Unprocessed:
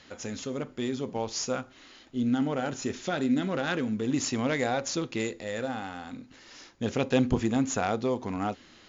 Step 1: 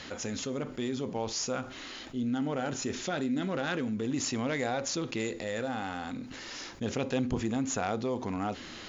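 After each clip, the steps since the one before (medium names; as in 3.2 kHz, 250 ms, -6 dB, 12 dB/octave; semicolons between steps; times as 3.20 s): level flattener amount 50%; trim -7 dB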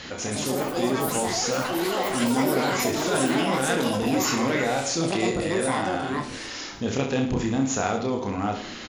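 reverse bouncing-ball echo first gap 30 ms, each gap 1.2×, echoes 5; ever faster or slower copies 183 ms, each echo +6 st, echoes 3; trim +4.5 dB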